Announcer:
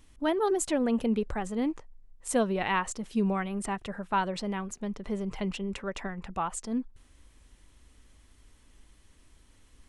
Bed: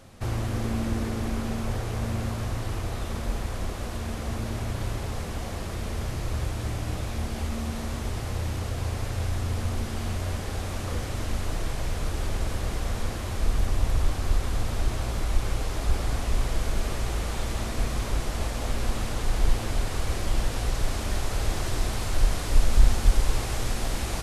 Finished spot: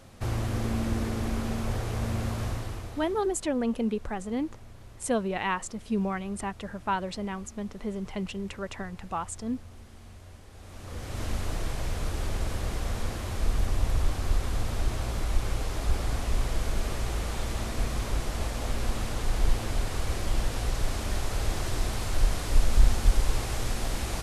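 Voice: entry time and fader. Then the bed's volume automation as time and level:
2.75 s, -1.0 dB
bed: 2.48 s -1 dB
3.44 s -19 dB
10.5 s -19 dB
11.23 s -2 dB

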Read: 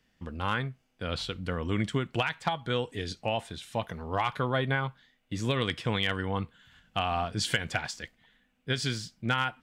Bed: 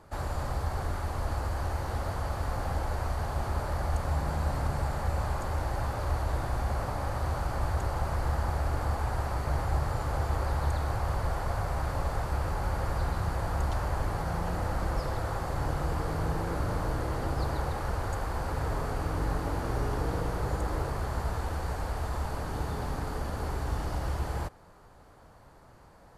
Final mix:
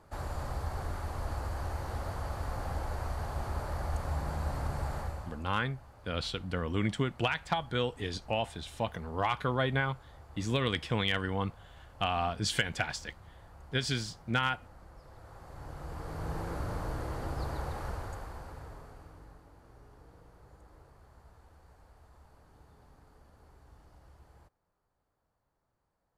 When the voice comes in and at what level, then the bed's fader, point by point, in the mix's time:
5.05 s, -1.5 dB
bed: 4.99 s -4.5 dB
5.54 s -23 dB
14.99 s -23 dB
16.37 s -5.5 dB
17.86 s -5.5 dB
19.48 s -26 dB

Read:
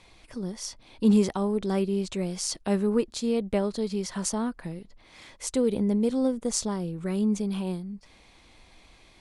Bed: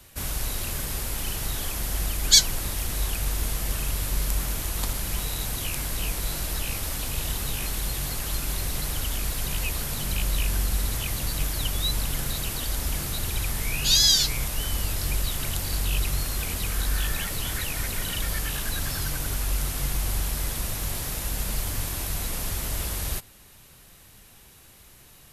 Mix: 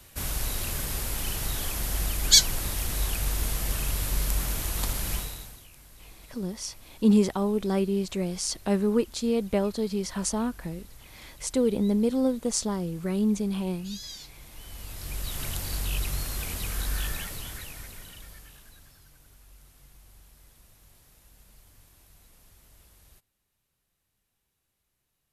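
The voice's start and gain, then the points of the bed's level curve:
6.00 s, +0.5 dB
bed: 5.14 s -1 dB
5.68 s -22.5 dB
14.32 s -22.5 dB
15.4 s -4 dB
17.07 s -4 dB
19.02 s -27.5 dB

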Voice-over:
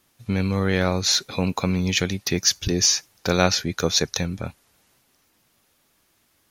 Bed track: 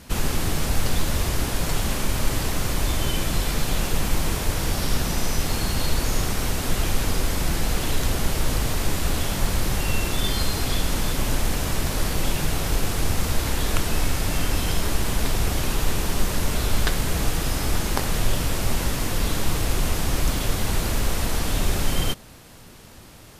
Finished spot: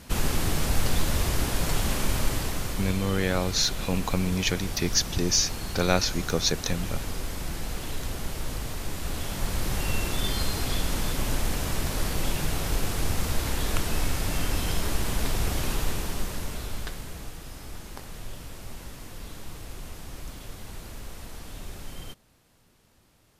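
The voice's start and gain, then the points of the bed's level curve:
2.50 s, -4.5 dB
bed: 2.14 s -2 dB
3.04 s -9.5 dB
8.89 s -9.5 dB
9.82 s -4 dB
15.73 s -4 dB
17.37 s -17 dB

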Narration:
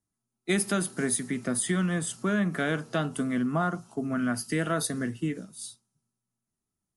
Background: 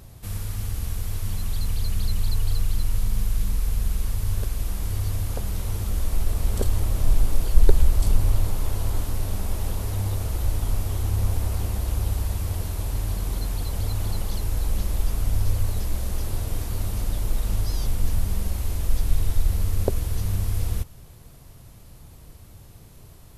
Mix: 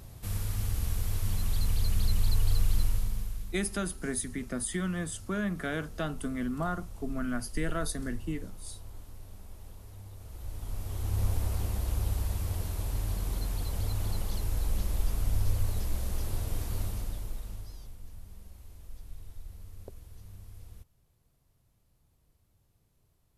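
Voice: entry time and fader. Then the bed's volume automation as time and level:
3.05 s, -5.5 dB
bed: 2.82 s -2.5 dB
3.74 s -21 dB
10.13 s -21 dB
11.21 s -5.5 dB
16.8 s -5.5 dB
18 s -23.5 dB

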